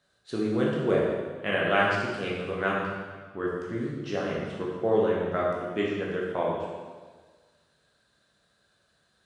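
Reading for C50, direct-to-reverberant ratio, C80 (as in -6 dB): 0.0 dB, -5.0 dB, 2.0 dB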